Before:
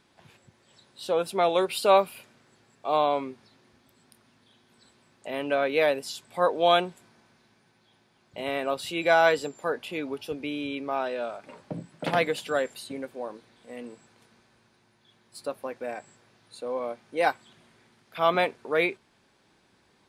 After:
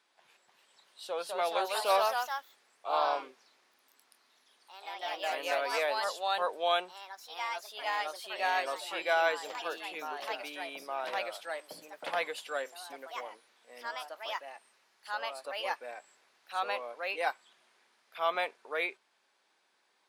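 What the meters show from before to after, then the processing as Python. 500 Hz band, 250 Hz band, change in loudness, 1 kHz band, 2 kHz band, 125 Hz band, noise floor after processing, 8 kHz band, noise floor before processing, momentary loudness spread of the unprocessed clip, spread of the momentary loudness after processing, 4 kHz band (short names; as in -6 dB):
-9.0 dB, -17.5 dB, -7.0 dB, -4.0 dB, -3.5 dB, under -25 dB, -73 dBFS, -3.0 dB, -65 dBFS, 18 LU, 15 LU, -2.5 dB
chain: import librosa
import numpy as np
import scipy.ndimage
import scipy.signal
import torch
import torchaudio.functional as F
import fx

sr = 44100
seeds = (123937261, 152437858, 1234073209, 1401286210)

y = scipy.signal.sosfilt(scipy.signal.butter(2, 630.0, 'highpass', fs=sr, output='sos'), x)
y = fx.echo_pitch(y, sr, ms=323, semitones=2, count=3, db_per_echo=-3.0)
y = y * librosa.db_to_amplitude(-6.0)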